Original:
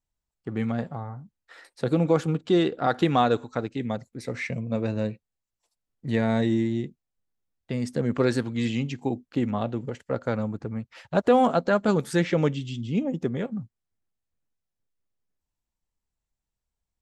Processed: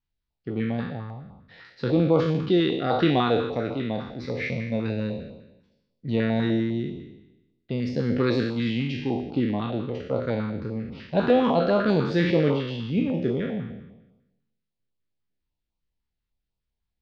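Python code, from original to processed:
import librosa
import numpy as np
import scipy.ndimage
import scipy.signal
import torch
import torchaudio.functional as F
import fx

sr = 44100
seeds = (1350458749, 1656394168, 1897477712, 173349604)

y = fx.spec_trails(x, sr, decay_s=1.0)
y = scipy.signal.sosfilt(scipy.signal.butter(6, 4800.0, 'lowpass', fs=sr, output='sos'), y)
y = fx.filter_held_notch(y, sr, hz=10.0, low_hz=600.0, high_hz=1700.0)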